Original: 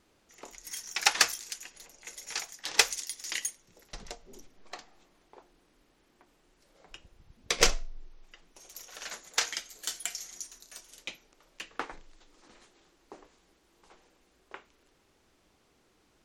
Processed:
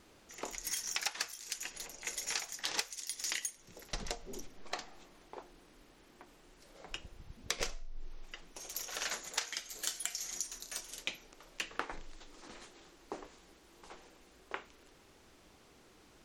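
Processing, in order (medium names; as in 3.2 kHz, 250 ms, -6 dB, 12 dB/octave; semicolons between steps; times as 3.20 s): compression 16:1, threshold -39 dBFS, peak gain reduction 24 dB; trim +6 dB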